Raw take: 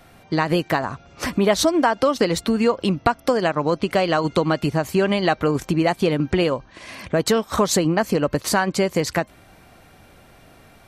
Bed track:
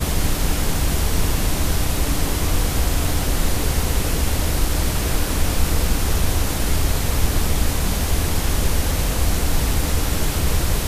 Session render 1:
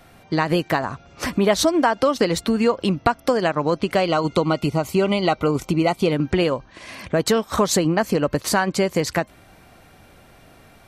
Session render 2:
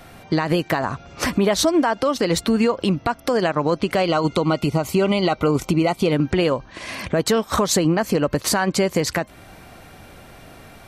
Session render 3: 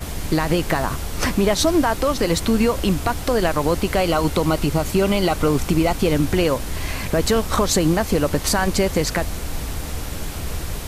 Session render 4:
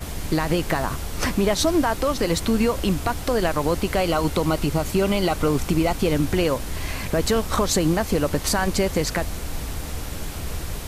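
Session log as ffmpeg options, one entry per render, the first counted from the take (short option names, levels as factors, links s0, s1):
-filter_complex "[0:a]asettb=1/sr,asplit=3[s0][s1][s2];[s0]atrim=end=4.064[s3];[s1]atrim=start=4.06:end=6.12,asetpts=PTS-STARTPTS,afade=t=in:d=0.004:c=qsin,afade=t=out:st=2.056:d=0.004:c=qsin,asuperstop=centerf=1700:order=12:qfactor=4.8[s4];[s2]atrim=start=6.116[s5];[s3][s4]acrossfade=d=0.004:c1=hsin:c2=qsin[s6];[s6][s5]acrossfade=d=0.004:c1=qsin:c2=hsin"
-filter_complex "[0:a]asplit=2[s0][s1];[s1]acompressor=threshold=0.0447:ratio=6,volume=1[s2];[s0][s2]amix=inputs=2:normalize=0,alimiter=limit=0.335:level=0:latency=1:release=61"
-filter_complex "[1:a]volume=0.398[s0];[0:a][s0]amix=inputs=2:normalize=0"
-af "volume=0.75"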